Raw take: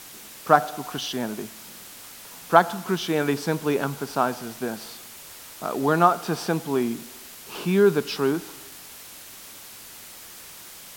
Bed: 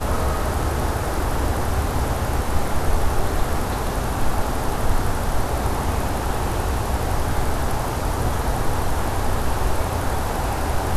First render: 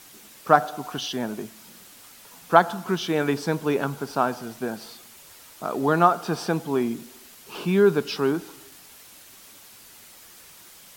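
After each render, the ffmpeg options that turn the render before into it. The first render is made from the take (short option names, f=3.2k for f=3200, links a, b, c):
-af "afftdn=nr=6:nf=-43"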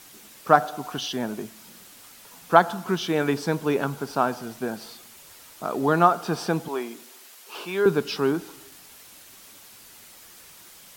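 -filter_complex "[0:a]asettb=1/sr,asplit=3[a][b][c];[a]atrim=end=6.684[d];[b]atrim=start=6.68:end=7.86,asetpts=PTS-STARTPTS,afade=t=in:d=0.004:c=qsin,afade=t=out:st=1.176:d=0.004:c=qsin,highpass=480[e];[c]atrim=start=7.856[f];[d][e]acrossfade=d=0.004:c1=hsin:c2=qsin[g];[g][f]acrossfade=d=0.004:c1=qsin:c2=hsin"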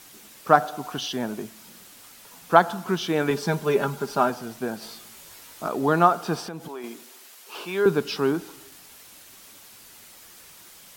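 -filter_complex "[0:a]asettb=1/sr,asplit=3[a][b][c];[a]atrim=end=3.304[d];[b]atrim=start=3.3:end=4.3,asetpts=PTS-STARTPTS,afade=t=in:d=0.004:c=qsin,afade=t=out:st=0.996:d=0.004:c=qsin,aecho=1:1:5:0.65,atrim=end_sample=44100[e];[c]atrim=start=4.296[f];[d][e]acrossfade=d=0.004:c1=hsin:c2=qsin[g];[g][f]acrossfade=d=0.004:c1=qsin:c2=hsin,asettb=1/sr,asplit=3[h][i][j];[h]atrim=end=4.804[k];[i]atrim=start=4.8:end=5.68,asetpts=PTS-STARTPTS,afade=t=in:d=0.004:c=qsin,afade=t=out:st=0.876:d=0.004:c=qsin,asplit=2[l][m];[m]adelay=18,volume=-2.5dB[n];[l][n]amix=inputs=2:normalize=0,atrim=end_sample=38808[o];[j]atrim=start=5.676[p];[k][o]acrossfade=d=0.004:c1=hsin:c2=qsin[q];[q][p]acrossfade=d=0.004:c1=qsin:c2=hsin,asettb=1/sr,asplit=3[r][s][t];[r]atrim=end=6.404[u];[s]atrim=start=6.4:end=6.84,asetpts=PTS-STARTPTS,afade=t=in:d=0.004:c=qsin,afade=t=out:st=0.436:d=0.004:c=qsin,acompressor=threshold=-33dB:ratio=4:attack=3.2:release=140:knee=1:detection=peak[v];[t]atrim=start=6.836[w];[u][v]acrossfade=d=0.004:c1=hsin:c2=qsin[x];[x][w]acrossfade=d=0.004:c1=qsin:c2=hsin"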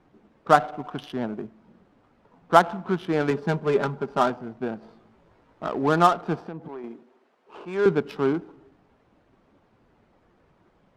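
-af "adynamicsmooth=sensitivity=2:basefreq=770"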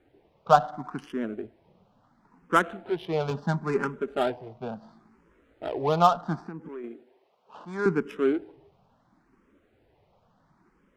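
-filter_complex "[0:a]asplit=2[a][b];[b]afreqshift=0.72[c];[a][c]amix=inputs=2:normalize=1"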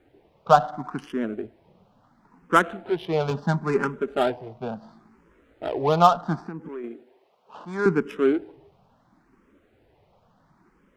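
-af "volume=3.5dB,alimiter=limit=-2dB:level=0:latency=1"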